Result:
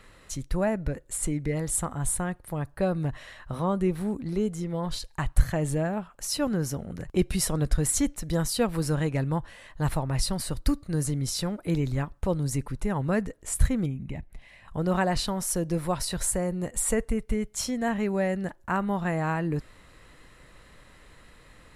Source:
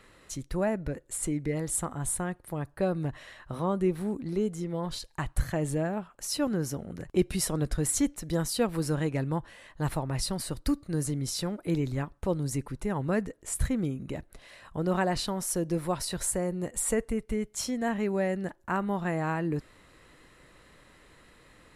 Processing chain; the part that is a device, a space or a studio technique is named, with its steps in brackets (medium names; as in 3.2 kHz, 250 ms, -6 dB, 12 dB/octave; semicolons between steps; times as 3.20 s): low shelf boost with a cut just above (bass shelf 68 Hz +7.5 dB; peaking EQ 340 Hz -3.5 dB 0.72 oct); 13.86–14.68 s: FFT filter 190 Hz 0 dB, 520 Hz -10 dB, 820 Hz -3 dB, 1.4 kHz -13 dB, 2.1 kHz 0 dB, 4.3 kHz -11 dB; trim +2.5 dB